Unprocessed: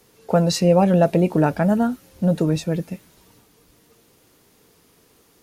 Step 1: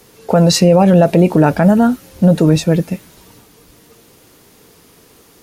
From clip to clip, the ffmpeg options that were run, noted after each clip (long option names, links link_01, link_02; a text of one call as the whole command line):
ffmpeg -i in.wav -af "alimiter=level_in=11dB:limit=-1dB:release=50:level=0:latency=1,volume=-1dB" out.wav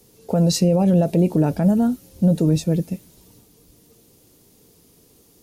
ffmpeg -i in.wav -af "equalizer=frequency=1500:width=0.55:gain=-13,volume=-5dB" out.wav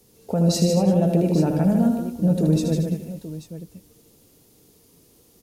ffmpeg -i in.wav -af "aecho=1:1:77|151|230|340|836:0.473|0.531|0.266|0.106|0.224,volume=-3.5dB" out.wav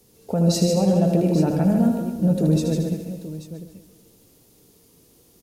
ffmpeg -i in.wav -af "aecho=1:1:136|272|408|544|680:0.251|0.128|0.0653|0.0333|0.017" out.wav